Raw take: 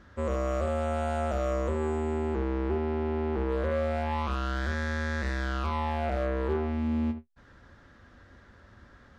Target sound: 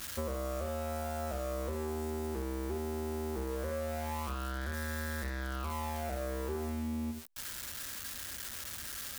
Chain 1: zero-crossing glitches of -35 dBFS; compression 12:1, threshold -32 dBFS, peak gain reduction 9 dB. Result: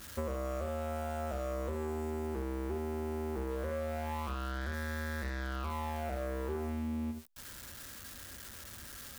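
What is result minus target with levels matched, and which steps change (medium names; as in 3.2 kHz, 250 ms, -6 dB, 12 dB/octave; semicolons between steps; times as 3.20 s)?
zero-crossing glitches: distortion -7 dB
change: zero-crossing glitches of -27.5 dBFS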